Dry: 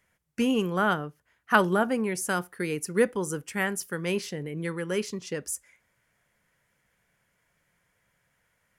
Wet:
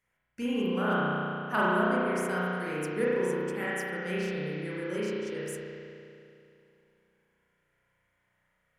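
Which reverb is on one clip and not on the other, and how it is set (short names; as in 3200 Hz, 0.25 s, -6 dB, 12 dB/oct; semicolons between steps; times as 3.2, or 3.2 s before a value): spring tank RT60 2.7 s, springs 33 ms, chirp 45 ms, DRR -8.5 dB; gain -11.5 dB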